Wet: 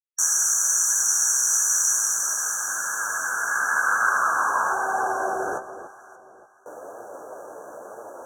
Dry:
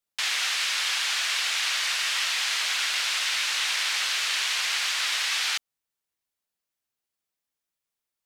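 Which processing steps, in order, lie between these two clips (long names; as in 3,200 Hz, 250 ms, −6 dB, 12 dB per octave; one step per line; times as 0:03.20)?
camcorder AGC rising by 38 dB per second
noise gate with hold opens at −46 dBFS
Butterworth high-pass 270 Hz 72 dB per octave
sine wavefolder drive 10 dB, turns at −12 dBFS
0:04.72–0:05.53: phases set to zero 385 Hz
fuzz pedal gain 37 dB, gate −43 dBFS
linear-phase brick-wall band-stop 1,700–5,700 Hz
band-pass filter sweep 5,300 Hz → 550 Hz, 0:01.92–0:05.54
on a send: delay that swaps between a low-pass and a high-pass 289 ms, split 1,100 Hz, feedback 53%, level −10.5 dB
on the sum: flanger 1 Hz, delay 8.3 ms, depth 9.2 ms, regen +29%
level +9 dB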